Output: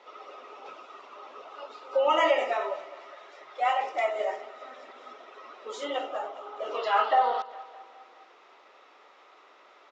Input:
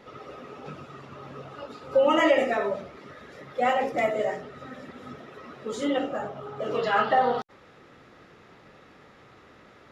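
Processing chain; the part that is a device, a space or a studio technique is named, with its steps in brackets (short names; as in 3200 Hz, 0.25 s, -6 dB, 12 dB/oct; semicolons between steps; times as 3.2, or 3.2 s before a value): 2.53–4.2 thirty-one-band EQ 125 Hz +11 dB, 250 Hz -11 dB, 500 Hz -7 dB; phone speaker on a table (speaker cabinet 440–6500 Hz, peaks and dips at 490 Hz -6 dB, 990 Hz +3 dB, 1700 Hz -7 dB, 4600 Hz -3 dB); feedback echo 0.206 s, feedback 58%, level -19 dB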